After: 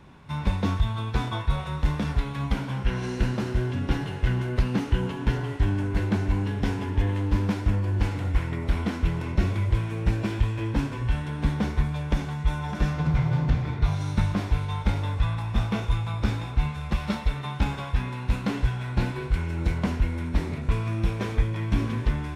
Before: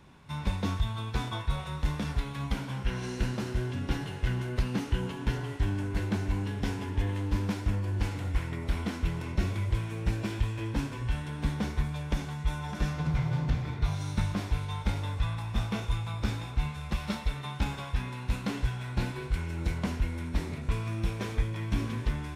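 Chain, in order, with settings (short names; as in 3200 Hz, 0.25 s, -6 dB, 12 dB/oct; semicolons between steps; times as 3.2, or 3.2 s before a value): high shelf 3900 Hz -7.5 dB; gain +5.5 dB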